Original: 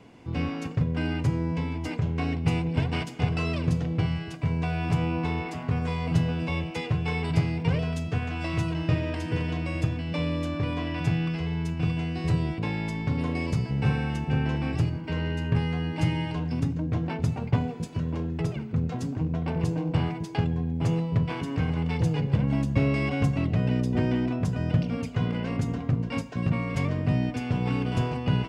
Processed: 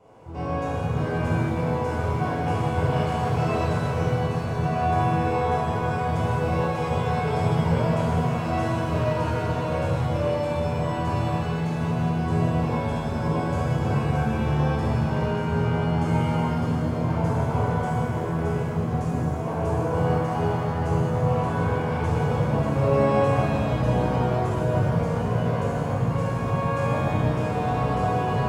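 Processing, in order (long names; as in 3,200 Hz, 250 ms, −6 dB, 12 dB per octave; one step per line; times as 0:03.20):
graphic EQ with 10 bands 250 Hz −10 dB, 500 Hz +6 dB, 1,000 Hz +7 dB, 2,000 Hz −8 dB, 4,000 Hz −8 dB
reverb with rising layers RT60 3.2 s, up +7 semitones, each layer −8 dB, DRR −11 dB
level −7 dB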